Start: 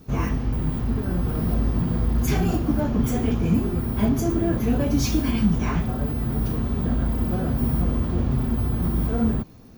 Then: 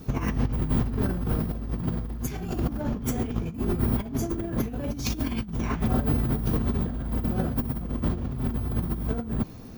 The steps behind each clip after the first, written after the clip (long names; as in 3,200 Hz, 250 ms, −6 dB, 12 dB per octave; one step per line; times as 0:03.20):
compressor whose output falls as the input rises −26 dBFS, ratio −0.5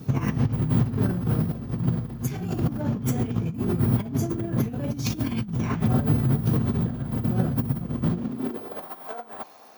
high-pass filter sweep 120 Hz → 760 Hz, 0:08.01–0:08.90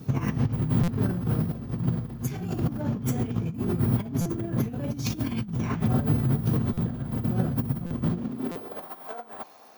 buffer that repeats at 0:00.83/0:04.21/0:06.73/0:07.86/0:08.51, samples 256, times 7
level −2 dB